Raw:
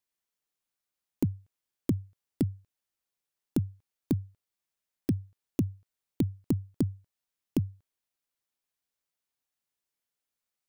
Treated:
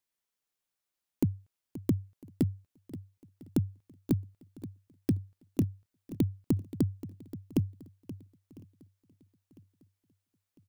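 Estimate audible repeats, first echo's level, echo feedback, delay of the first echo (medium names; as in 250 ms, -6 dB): 4, -15.0 dB, no regular repeats, 528 ms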